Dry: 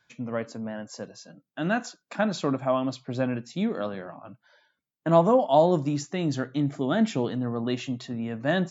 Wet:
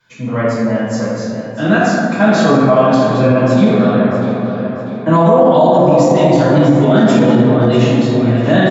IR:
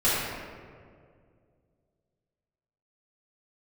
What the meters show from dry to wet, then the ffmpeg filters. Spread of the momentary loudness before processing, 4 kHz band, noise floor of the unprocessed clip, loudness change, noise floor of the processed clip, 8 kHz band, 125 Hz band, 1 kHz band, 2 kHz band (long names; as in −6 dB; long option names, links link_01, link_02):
17 LU, +12.5 dB, −83 dBFS, +15.0 dB, −24 dBFS, can't be measured, +17.0 dB, +13.5 dB, +15.0 dB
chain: -filter_complex "[0:a]asplit=2[link_01][link_02];[link_02]adelay=644,lowpass=frequency=4800:poles=1,volume=-10dB,asplit=2[link_03][link_04];[link_04]adelay=644,lowpass=frequency=4800:poles=1,volume=0.54,asplit=2[link_05][link_06];[link_06]adelay=644,lowpass=frequency=4800:poles=1,volume=0.54,asplit=2[link_07][link_08];[link_08]adelay=644,lowpass=frequency=4800:poles=1,volume=0.54,asplit=2[link_09][link_10];[link_10]adelay=644,lowpass=frequency=4800:poles=1,volume=0.54,asplit=2[link_11][link_12];[link_12]adelay=644,lowpass=frequency=4800:poles=1,volume=0.54[link_13];[link_01][link_03][link_05][link_07][link_09][link_11][link_13]amix=inputs=7:normalize=0[link_14];[1:a]atrim=start_sample=2205,asetrate=37926,aresample=44100[link_15];[link_14][link_15]afir=irnorm=-1:irlink=0,alimiter=limit=-1.5dB:level=0:latency=1:release=37"